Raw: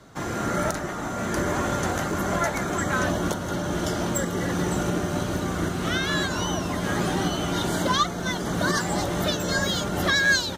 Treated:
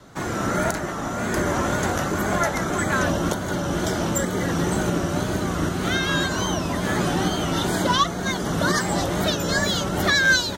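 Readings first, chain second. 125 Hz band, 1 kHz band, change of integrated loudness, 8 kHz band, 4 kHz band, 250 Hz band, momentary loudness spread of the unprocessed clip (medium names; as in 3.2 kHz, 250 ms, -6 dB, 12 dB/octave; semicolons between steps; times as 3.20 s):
+2.5 dB, +2.5 dB, +2.5 dB, +2.5 dB, +2.5 dB, +2.5 dB, 4 LU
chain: wow and flutter 84 cents; trim +2.5 dB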